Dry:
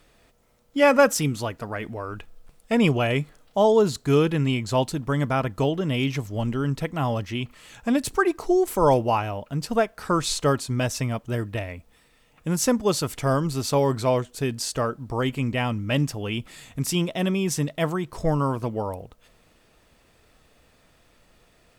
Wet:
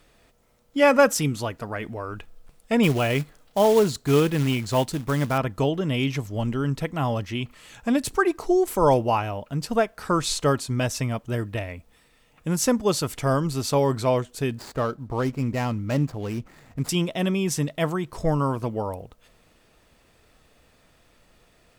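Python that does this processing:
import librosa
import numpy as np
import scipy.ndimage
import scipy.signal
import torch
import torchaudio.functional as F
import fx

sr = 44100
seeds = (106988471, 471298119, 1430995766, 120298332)

y = fx.quant_float(x, sr, bits=2, at=(2.83, 5.38))
y = fx.median_filter(y, sr, points=15, at=(14.58, 16.89))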